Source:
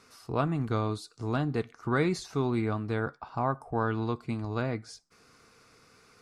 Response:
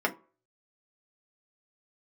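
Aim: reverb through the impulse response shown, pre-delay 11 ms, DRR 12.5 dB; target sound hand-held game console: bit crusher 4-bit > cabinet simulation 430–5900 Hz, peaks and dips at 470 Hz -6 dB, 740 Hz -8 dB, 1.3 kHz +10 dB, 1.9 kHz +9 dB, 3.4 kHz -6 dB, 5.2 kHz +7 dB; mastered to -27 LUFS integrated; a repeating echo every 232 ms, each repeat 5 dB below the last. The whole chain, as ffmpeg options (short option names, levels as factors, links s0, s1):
-filter_complex "[0:a]aecho=1:1:232|464|696|928|1160|1392|1624:0.562|0.315|0.176|0.0988|0.0553|0.031|0.0173,asplit=2[s0][s1];[1:a]atrim=start_sample=2205,adelay=11[s2];[s1][s2]afir=irnorm=-1:irlink=0,volume=0.0708[s3];[s0][s3]amix=inputs=2:normalize=0,acrusher=bits=3:mix=0:aa=0.000001,highpass=430,equalizer=f=470:t=q:w=4:g=-6,equalizer=f=740:t=q:w=4:g=-8,equalizer=f=1300:t=q:w=4:g=10,equalizer=f=1900:t=q:w=4:g=9,equalizer=f=3400:t=q:w=4:g=-6,equalizer=f=5200:t=q:w=4:g=7,lowpass=f=5900:w=0.5412,lowpass=f=5900:w=1.3066,volume=1.06"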